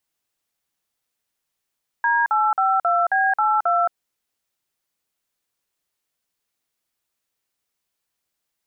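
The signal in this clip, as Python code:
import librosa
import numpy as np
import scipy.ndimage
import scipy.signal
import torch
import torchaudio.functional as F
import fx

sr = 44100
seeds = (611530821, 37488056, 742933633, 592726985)

y = fx.dtmf(sr, digits='D852B82', tone_ms=221, gap_ms=48, level_db=-18.5)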